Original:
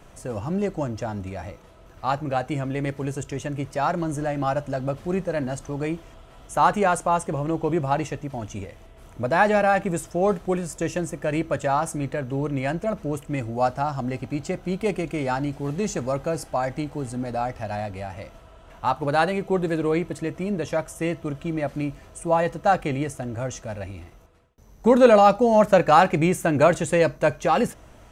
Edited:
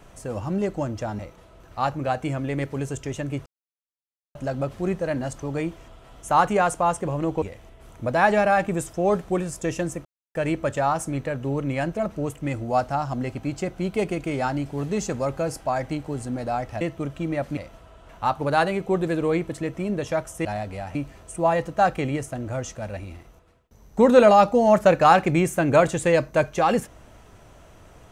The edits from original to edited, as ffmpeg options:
-filter_complex "[0:a]asplit=10[a][b][c][d][e][f][g][h][i][j];[a]atrim=end=1.192[k];[b]atrim=start=1.448:end=3.72,asetpts=PTS-STARTPTS,afade=t=out:st=2.268:d=0.004:c=hsin[l];[c]atrim=start=3.72:end=4.61,asetpts=PTS-STARTPTS,volume=0[m];[d]atrim=start=4.61:end=7.682,asetpts=PTS-STARTPTS,afade=t=in:d=0.004:c=hsin[n];[e]atrim=start=8.588:end=11.22,asetpts=PTS-STARTPTS,afade=t=out:st=2.628:d=0.004:c=hsin,apad=pad_dur=0.3[o];[f]atrim=start=11.22:end=17.682,asetpts=PTS-STARTPTS,afade=t=in:d=0.004:c=hsin[p];[g]atrim=start=21.058:end=21.822[q];[h]atrim=start=18.178:end=21.062[r];[i]atrim=start=17.678:end=18.182[s];[j]atrim=start=21.818[t];[l][m][n]concat=n=3:v=0:a=1[u];[k][u]acrossfade=d=0.004:c1=hsin:c2=hsin[v];[o][p]concat=n=2:v=0:a=1[w];[v][w]acrossfade=d=0.004:c1=hsin:c2=hsin[x];[x][q]acrossfade=d=0.004:c1=hsin:c2=hsin[y];[y][r]acrossfade=d=0.004:c1=hsin:c2=hsin[z];[z][s]acrossfade=d=0.004:c1=hsin:c2=hsin[aa];[aa][t]acrossfade=d=0.004:c1=hsin:c2=hsin"

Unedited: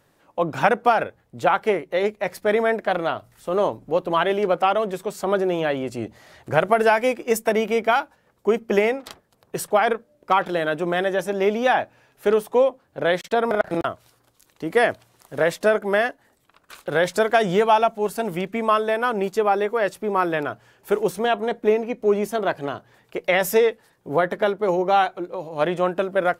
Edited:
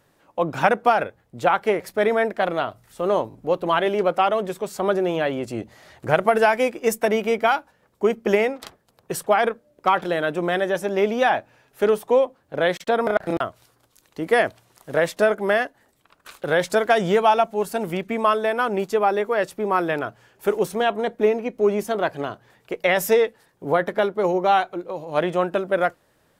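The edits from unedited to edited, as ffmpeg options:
-filter_complex "[0:a]asplit=4[a][b][c][d];[a]atrim=end=1.802[e];[b]atrim=start=2.278:end=3.792[f];[c]atrim=start=3.768:end=3.792[g];[d]atrim=start=3.768[h];[e][f]acrossfade=d=0.004:c1=hsin:c2=hsin[i];[i][g]acrossfade=d=0.004:c1=hsin:c2=hsin[j];[j][h]acrossfade=d=0.004:c1=hsin:c2=hsin"

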